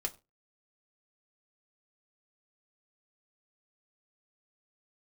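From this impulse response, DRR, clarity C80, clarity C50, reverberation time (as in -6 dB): 1.5 dB, 25.0 dB, 20.5 dB, no single decay rate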